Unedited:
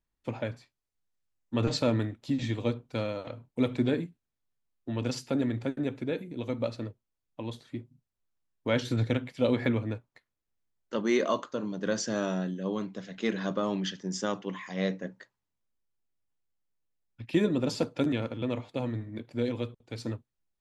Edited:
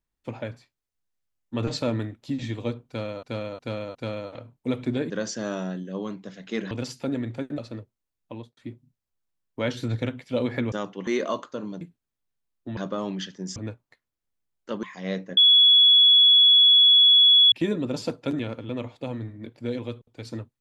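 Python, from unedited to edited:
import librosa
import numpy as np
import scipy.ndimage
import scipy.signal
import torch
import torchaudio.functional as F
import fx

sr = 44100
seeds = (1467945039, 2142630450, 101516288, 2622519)

y = fx.studio_fade_out(x, sr, start_s=7.4, length_s=0.25)
y = fx.edit(y, sr, fx.repeat(start_s=2.87, length_s=0.36, count=4),
    fx.swap(start_s=4.02, length_s=0.96, other_s=11.81, other_length_s=1.61),
    fx.cut(start_s=5.85, length_s=0.81),
    fx.swap(start_s=9.8, length_s=1.27, other_s=14.21, other_length_s=0.35),
    fx.bleep(start_s=15.1, length_s=2.15, hz=3380.0, db=-12.0), tone=tone)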